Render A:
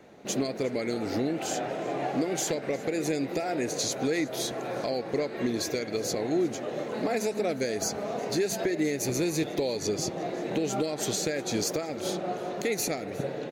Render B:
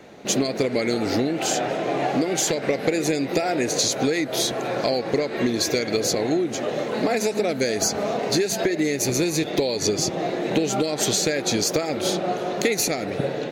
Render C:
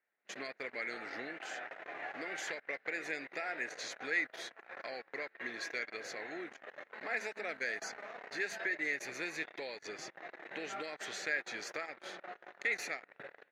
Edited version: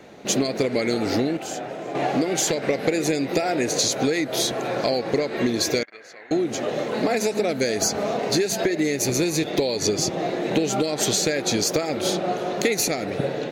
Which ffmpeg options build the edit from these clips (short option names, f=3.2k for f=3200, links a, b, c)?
-filter_complex "[1:a]asplit=3[a][b][c];[a]atrim=end=1.372[d];[0:a]atrim=start=1.368:end=1.952[e];[b]atrim=start=1.948:end=5.832[f];[2:a]atrim=start=5.828:end=6.312[g];[c]atrim=start=6.308[h];[d][e]acrossfade=d=0.004:c1=hsin:c2=hsin[i];[i][f]acrossfade=d=0.004:c1=hsin:c2=hsin[j];[j][g]acrossfade=d=0.004:c1=hsin:c2=hsin[k];[k][h]acrossfade=d=0.004:c1=hsin:c2=hsin"